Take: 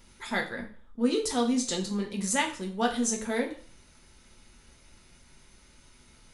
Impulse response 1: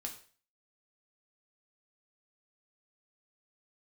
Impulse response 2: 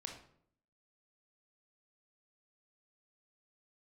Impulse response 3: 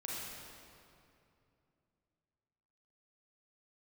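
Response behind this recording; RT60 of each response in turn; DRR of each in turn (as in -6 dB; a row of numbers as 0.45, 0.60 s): 1; 0.40, 0.65, 2.7 s; 1.0, 1.5, -5.5 dB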